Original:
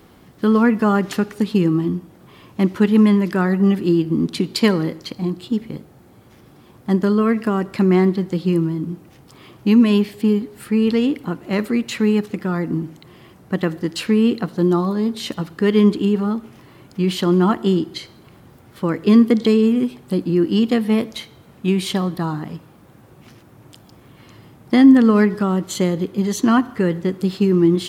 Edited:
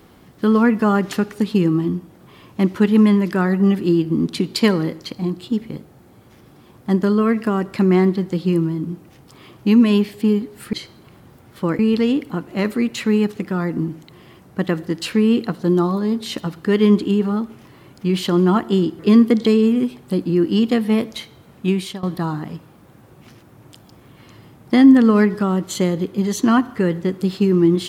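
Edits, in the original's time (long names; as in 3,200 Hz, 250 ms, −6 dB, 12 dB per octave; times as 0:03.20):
0:17.93–0:18.99: move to 0:10.73
0:21.69–0:22.03: fade out, to −17.5 dB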